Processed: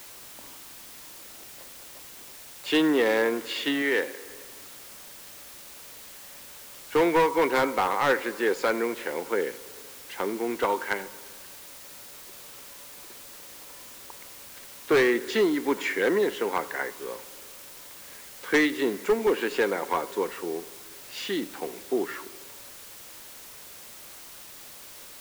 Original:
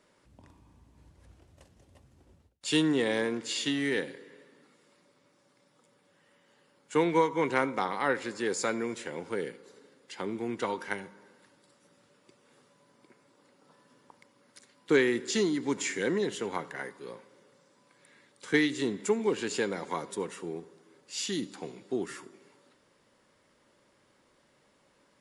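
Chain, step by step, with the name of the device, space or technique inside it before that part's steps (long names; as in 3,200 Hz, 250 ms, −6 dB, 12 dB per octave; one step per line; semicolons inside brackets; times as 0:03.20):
aircraft radio (band-pass filter 360–2,500 Hz; hard clipping −25 dBFS, distortion −11 dB; white noise bed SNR 16 dB)
0:03.82–0:04.25: low-shelf EQ 170 Hz −10.5 dB
level +8.5 dB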